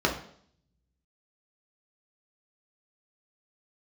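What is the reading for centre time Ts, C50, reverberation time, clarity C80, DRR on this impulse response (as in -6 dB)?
22 ms, 8.5 dB, 0.60 s, 12.0 dB, -1.0 dB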